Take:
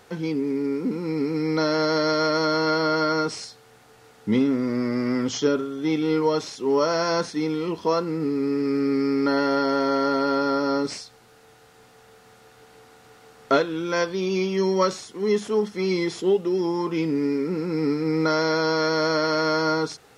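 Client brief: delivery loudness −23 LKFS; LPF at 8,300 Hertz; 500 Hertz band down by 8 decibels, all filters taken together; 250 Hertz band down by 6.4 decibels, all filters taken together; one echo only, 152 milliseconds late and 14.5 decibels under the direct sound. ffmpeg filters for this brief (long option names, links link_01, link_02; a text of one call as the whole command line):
ffmpeg -i in.wav -af "lowpass=8300,equalizer=frequency=250:width_type=o:gain=-5,equalizer=frequency=500:width_type=o:gain=-8.5,aecho=1:1:152:0.188,volume=5dB" out.wav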